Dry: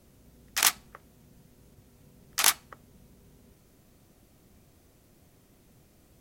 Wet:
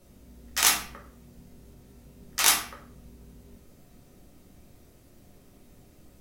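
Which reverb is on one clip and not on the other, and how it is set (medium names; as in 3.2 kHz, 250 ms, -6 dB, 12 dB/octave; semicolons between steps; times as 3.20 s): simulated room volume 71 m³, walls mixed, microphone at 0.93 m; trim -1 dB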